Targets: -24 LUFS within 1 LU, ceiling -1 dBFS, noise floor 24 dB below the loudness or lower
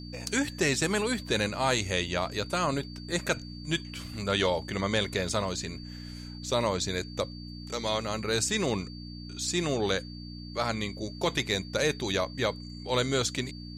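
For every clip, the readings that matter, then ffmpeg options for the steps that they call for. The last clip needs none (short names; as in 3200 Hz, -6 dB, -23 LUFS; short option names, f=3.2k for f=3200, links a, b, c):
hum 60 Hz; harmonics up to 300 Hz; hum level -40 dBFS; steady tone 4600 Hz; tone level -47 dBFS; loudness -29.5 LUFS; peak -13.0 dBFS; loudness target -24.0 LUFS
-> -af "bandreject=f=60:t=h:w=4,bandreject=f=120:t=h:w=4,bandreject=f=180:t=h:w=4,bandreject=f=240:t=h:w=4,bandreject=f=300:t=h:w=4"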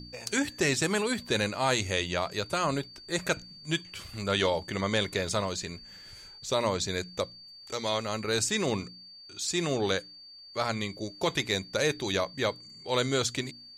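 hum none; steady tone 4600 Hz; tone level -47 dBFS
-> -af "bandreject=f=4.6k:w=30"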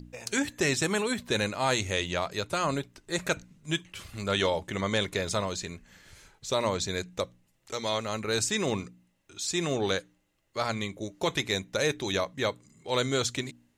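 steady tone none; loudness -30.0 LUFS; peak -12.5 dBFS; loudness target -24.0 LUFS
-> -af "volume=6dB"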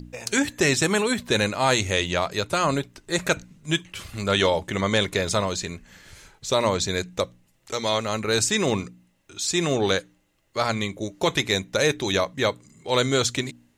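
loudness -24.0 LUFS; peak -6.5 dBFS; noise floor -65 dBFS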